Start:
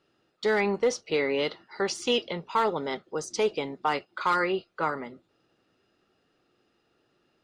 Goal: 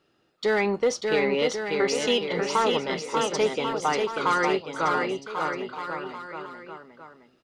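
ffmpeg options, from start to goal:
-filter_complex "[0:a]asplit=2[s0][s1];[s1]asoftclip=type=tanh:threshold=0.0562,volume=0.316[s2];[s0][s2]amix=inputs=2:normalize=0,aecho=1:1:590|1092|1518|1880|2188:0.631|0.398|0.251|0.158|0.1"

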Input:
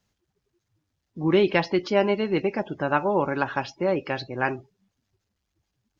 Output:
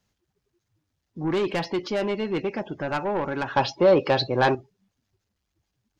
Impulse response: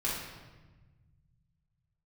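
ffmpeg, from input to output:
-filter_complex "[0:a]asoftclip=type=tanh:threshold=0.1,asettb=1/sr,asplit=3[s0][s1][s2];[s0]atrim=end=3.564[s3];[s1]atrim=start=3.56:end=4.55,asetpts=PTS-STARTPTS,afade=t=in:d=0.004:c=qsin,afade=t=out:st=0.986:d=0.004:c=qsin,equalizer=f=125:t=o:w=1:g=7,equalizer=f=250:t=o:w=1:g=3,equalizer=f=500:t=o:w=1:g=9,equalizer=f=1000:t=o:w=1:g=9,equalizer=f=4000:t=o:w=1:g=11[s4];[s2]atrim=start=4.546[s5];[s3][s4]acrossfade=d=0.004:c1=hsin:c2=qsin[s6];[s6][s5]acrossfade=d=0.004:c1=qsin:c2=hsin"

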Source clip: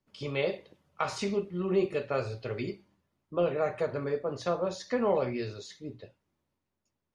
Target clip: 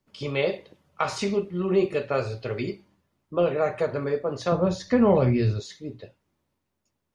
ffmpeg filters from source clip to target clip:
-filter_complex "[0:a]asettb=1/sr,asplit=3[s0][s1][s2];[s0]atrim=end=4.524[s3];[s1]atrim=start=4.52:end=5.6,asetpts=PTS-STARTPTS,afade=t=in:d=0.004:c=qsin,afade=t=out:st=1.076:d=0.004:c=qsin,bass=f=250:g=14,treble=f=4000:g=-2[s4];[s2]atrim=start=5.596[s5];[s3][s4]acrossfade=d=0.004:c1=hsin:c2=qsin[s6];[s6][s5]acrossfade=d=0.004:c1=qsin:c2=hsin,volume=1.78"

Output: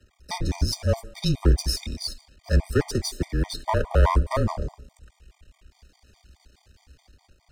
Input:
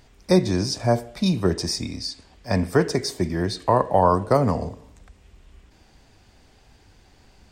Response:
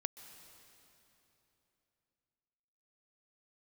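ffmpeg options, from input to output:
-filter_complex "[0:a]aeval=exprs='if(lt(val(0),0),0.251*val(0),val(0))':c=same,acrossover=split=180|1100|2300[s0][s1][s2][s3];[s3]dynaudnorm=f=120:g=9:m=1.78[s4];[s0][s1][s2][s4]amix=inputs=4:normalize=0,afreqshift=-27,equalizer=f=61:t=o:w=0.77:g=14.5,afftfilt=real='re*gt(sin(2*PI*4.8*pts/sr)*(1-2*mod(floor(b*sr/1024/620),2)),0)':imag='im*gt(sin(2*PI*4.8*pts/sr)*(1-2*mod(floor(b*sr/1024/620),2)),0)':win_size=1024:overlap=0.75"

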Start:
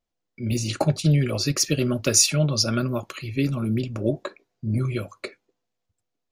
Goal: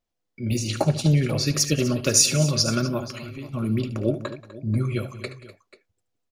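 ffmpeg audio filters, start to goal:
-filter_complex "[0:a]asplit=3[s0][s1][s2];[s0]afade=t=out:st=3.07:d=0.02[s3];[s1]acompressor=threshold=0.02:ratio=12,afade=t=in:st=3.07:d=0.02,afade=t=out:st=3.53:d=0.02[s4];[s2]afade=t=in:st=3.53:d=0.02[s5];[s3][s4][s5]amix=inputs=3:normalize=0,aecho=1:1:74|181|249|488:0.224|0.112|0.15|0.126"

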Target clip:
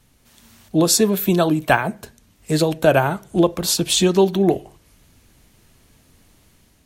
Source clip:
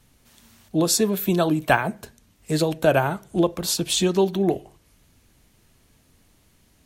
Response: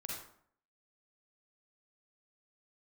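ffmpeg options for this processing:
-af "dynaudnorm=f=170:g=5:m=1.58,volume=1.12"

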